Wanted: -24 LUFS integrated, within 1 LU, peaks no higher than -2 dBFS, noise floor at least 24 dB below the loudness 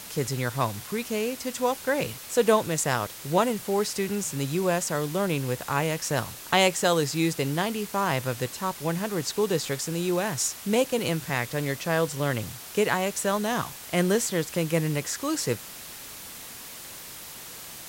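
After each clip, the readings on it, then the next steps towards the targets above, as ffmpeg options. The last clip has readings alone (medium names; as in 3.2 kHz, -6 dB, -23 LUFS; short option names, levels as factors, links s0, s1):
noise floor -42 dBFS; noise floor target -51 dBFS; loudness -26.5 LUFS; peak level -6.5 dBFS; loudness target -24.0 LUFS
-> -af "afftdn=nr=9:nf=-42"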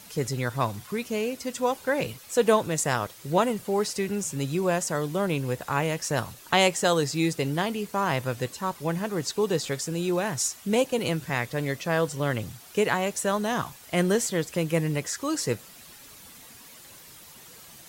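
noise floor -49 dBFS; noise floor target -51 dBFS
-> -af "afftdn=nr=6:nf=-49"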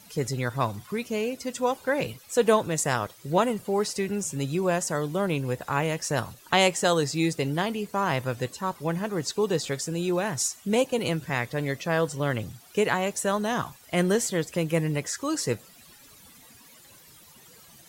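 noise floor -53 dBFS; loudness -27.0 LUFS; peak level -6.5 dBFS; loudness target -24.0 LUFS
-> -af "volume=1.41"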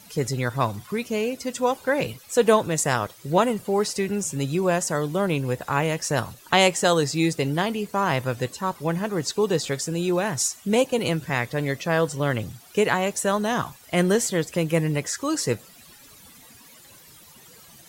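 loudness -24.0 LUFS; peak level -3.5 dBFS; noise floor -50 dBFS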